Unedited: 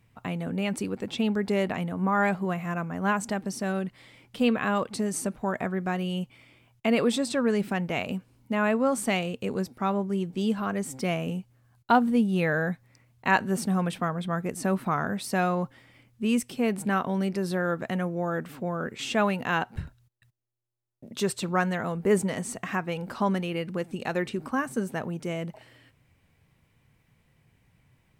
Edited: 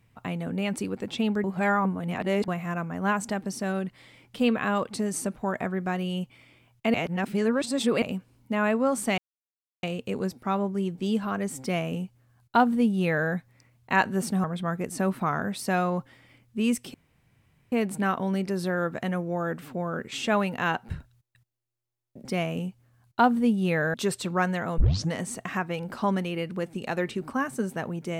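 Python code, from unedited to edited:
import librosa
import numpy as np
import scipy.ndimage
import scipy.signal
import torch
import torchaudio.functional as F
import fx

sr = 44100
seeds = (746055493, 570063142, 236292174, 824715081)

y = fx.edit(x, sr, fx.reverse_span(start_s=1.44, length_s=1.04),
    fx.reverse_span(start_s=6.94, length_s=1.08),
    fx.insert_silence(at_s=9.18, length_s=0.65),
    fx.duplicate(start_s=10.96, length_s=1.69, to_s=21.12),
    fx.cut(start_s=13.79, length_s=0.3),
    fx.insert_room_tone(at_s=16.59, length_s=0.78),
    fx.tape_start(start_s=21.96, length_s=0.34), tone=tone)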